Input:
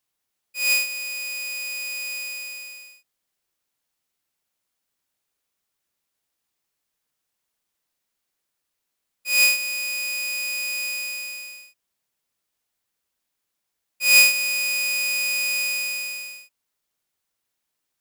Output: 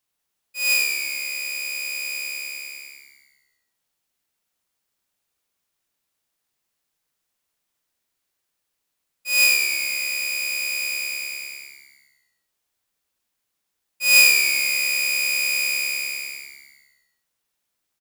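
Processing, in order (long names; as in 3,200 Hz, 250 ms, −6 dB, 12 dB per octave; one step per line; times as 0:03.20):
echo with shifted repeats 99 ms, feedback 59%, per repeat −70 Hz, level −5.5 dB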